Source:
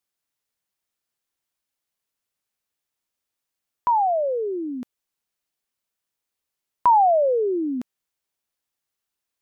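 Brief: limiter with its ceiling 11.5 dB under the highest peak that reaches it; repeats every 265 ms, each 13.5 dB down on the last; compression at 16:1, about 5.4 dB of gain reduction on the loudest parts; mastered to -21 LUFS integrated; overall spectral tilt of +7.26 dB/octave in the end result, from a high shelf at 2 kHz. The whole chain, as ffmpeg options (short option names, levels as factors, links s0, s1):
-af "highshelf=f=2000:g=-8,acompressor=threshold=0.1:ratio=16,alimiter=limit=0.0708:level=0:latency=1,aecho=1:1:265|530:0.211|0.0444,volume=2.37"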